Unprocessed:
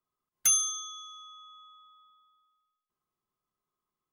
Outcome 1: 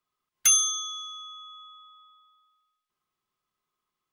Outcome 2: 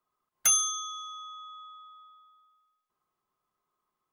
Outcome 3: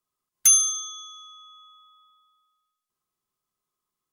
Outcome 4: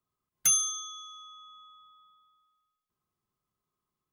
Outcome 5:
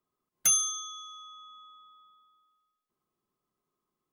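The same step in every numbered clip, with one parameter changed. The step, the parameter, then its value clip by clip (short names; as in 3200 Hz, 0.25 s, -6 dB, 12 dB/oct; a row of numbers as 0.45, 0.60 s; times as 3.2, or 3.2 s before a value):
bell, frequency: 2800, 940, 9100, 91, 300 Hz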